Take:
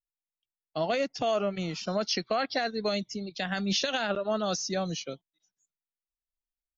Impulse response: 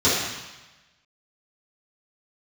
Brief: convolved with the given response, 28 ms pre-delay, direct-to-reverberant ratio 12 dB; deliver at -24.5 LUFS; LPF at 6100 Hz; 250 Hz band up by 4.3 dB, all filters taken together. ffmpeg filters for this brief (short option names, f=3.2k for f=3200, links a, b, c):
-filter_complex "[0:a]lowpass=6.1k,equalizer=f=250:t=o:g=6,asplit=2[a][b];[1:a]atrim=start_sample=2205,adelay=28[c];[b][c]afir=irnorm=-1:irlink=0,volume=-31.5dB[d];[a][d]amix=inputs=2:normalize=0,volume=4dB"